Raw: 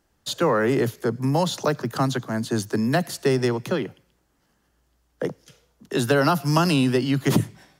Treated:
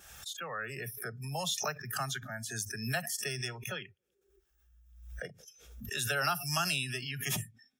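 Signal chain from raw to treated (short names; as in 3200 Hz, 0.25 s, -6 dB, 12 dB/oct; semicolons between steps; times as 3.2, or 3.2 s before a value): opening faded in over 0.97 s; passive tone stack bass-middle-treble 10-0-10; notch 4500 Hz, Q 5.4; on a send: narrowing echo 92 ms, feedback 76%, band-pass 330 Hz, level -21.5 dB; on the sum: upward compressor, threshold -35 dBFS; notch comb 1000 Hz; spectral noise reduction 29 dB; backwards sustainer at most 64 dB/s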